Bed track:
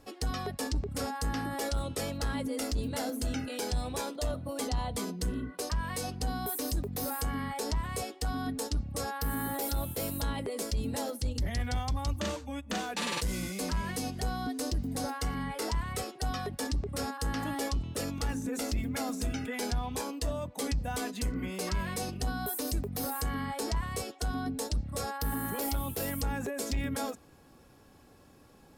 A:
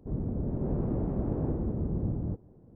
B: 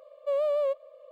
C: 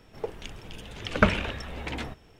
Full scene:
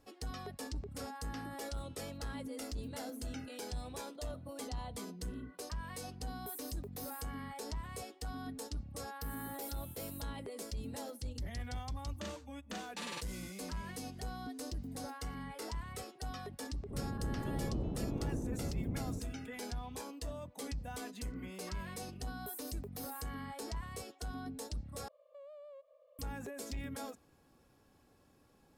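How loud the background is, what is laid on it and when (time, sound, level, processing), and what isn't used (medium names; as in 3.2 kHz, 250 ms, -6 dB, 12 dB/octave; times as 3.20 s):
bed track -9.5 dB
16.84 s: add A -8 dB
25.08 s: replace with B -14 dB + compression 5:1, threshold -38 dBFS
not used: C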